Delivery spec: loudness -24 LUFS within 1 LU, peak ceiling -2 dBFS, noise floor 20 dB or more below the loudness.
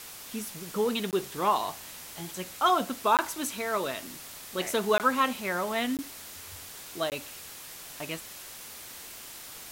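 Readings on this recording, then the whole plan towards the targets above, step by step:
dropouts 5; longest dropout 18 ms; noise floor -45 dBFS; noise floor target -50 dBFS; loudness -30.0 LUFS; peak level -12.5 dBFS; loudness target -24.0 LUFS
-> interpolate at 1.11/3.17/4.98/5.97/7.10 s, 18 ms; noise reduction 6 dB, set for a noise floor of -45 dBFS; trim +6 dB

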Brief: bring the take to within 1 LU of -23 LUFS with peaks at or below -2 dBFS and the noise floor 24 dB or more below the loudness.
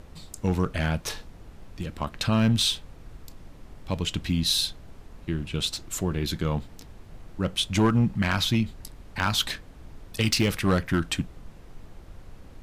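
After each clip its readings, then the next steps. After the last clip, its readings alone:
clipped samples 0.5%; clipping level -15.0 dBFS; noise floor -48 dBFS; noise floor target -51 dBFS; loudness -26.5 LUFS; peak level -15.0 dBFS; loudness target -23.0 LUFS
-> clip repair -15 dBFS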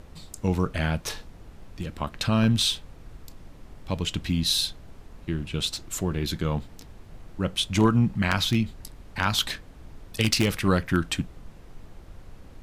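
clipped samples 0.0%; noise floor -48 dBFS; noise floor target -50 dBFS
-> noise print and reduce 6 dB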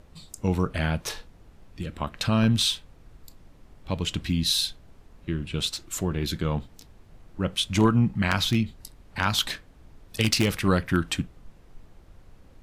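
noise floor -53 dBFS; loudness -26.0 LUFS; peak level -6.0 dBFS; loudness target -23.0 LUFS
-> trim +3 dB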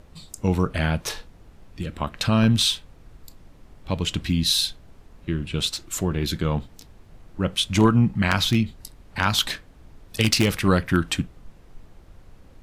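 loudness -23.0 LUFS; peak level -3.0 dBFS; noise floor -50 dBFS

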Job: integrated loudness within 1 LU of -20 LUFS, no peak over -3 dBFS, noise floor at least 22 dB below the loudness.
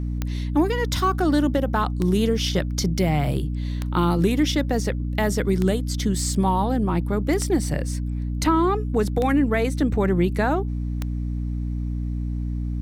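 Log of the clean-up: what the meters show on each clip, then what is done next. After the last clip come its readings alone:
clicks found 7; hum 60 Hz; highest harmonic 300 Hz; hum level -24 dBFS; loudness -23.0 LUFS; peak level -6.5 dBFS; loudness target -20.0 LUFS
-> de-click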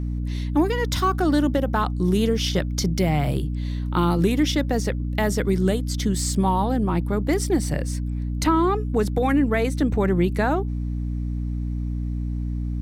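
clicks found 0; hum 60 Hz; highest harmonic 300 Hz; hum level -24 dBFS
-> de-hum 60 Hz, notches 5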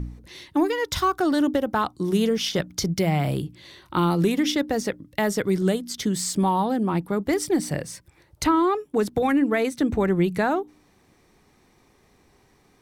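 hum not found; loudness -23.5 LUFS; peak level -8.5 dBFS; loudness target -20.0 LUFS
-> trim +3.5 dB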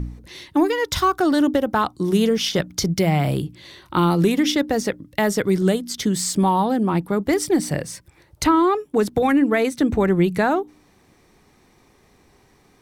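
loudness -20.0 LUFS; peak level -5.0 dBFS; noise floor -57 dBFS

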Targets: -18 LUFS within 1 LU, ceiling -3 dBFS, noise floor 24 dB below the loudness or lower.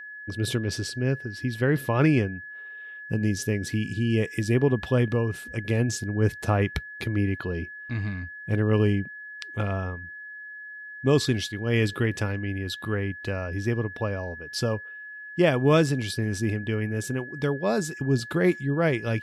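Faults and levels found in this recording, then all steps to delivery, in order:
steady tone 1.7 kHz; tone level -38 dBFS; loudness -26.5 LUFS; peak level -9.0 dBFS; loudness target -18.0 LUFS
-> band-stop 1.7 kHz, Q 30; trim +8.5 dB; peak limiter -3 dBFS

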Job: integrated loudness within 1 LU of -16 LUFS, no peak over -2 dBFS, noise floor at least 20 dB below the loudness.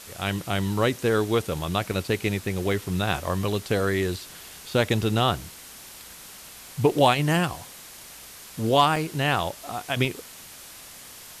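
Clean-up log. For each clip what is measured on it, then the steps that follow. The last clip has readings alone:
dropouts 4; longest dropout 1.9 ms; noise floor -44 dBFS; noise floor target -45 dBFS; loudness -25.0 LUFS; peak level -6.0 dBFS; loudness target -16.0 LUFS
-> interpolate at 1.93/2.72/8.96/10.05 s, 1.9 ms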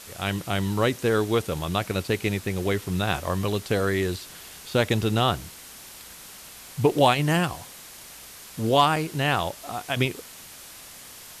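dropouts 0; noise floor -44 dBFS; noise floor target -45 dBFS
-> noise reduction 6 dB, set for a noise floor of -44 dBFS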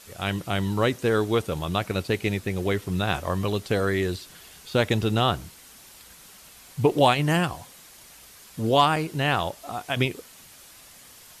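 noise floor -49 dBFS; loudness -25.0 LUFS; peak level -6.0 dBFS; loudness target -16.0 LUFS
-> trim +9 dB; peak limiter -2 dBFS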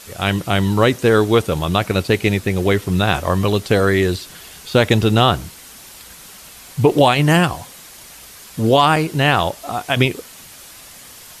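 loudness -16.5 LUFS; peak level -2.0 dBFS; noise floor -40 dBFS

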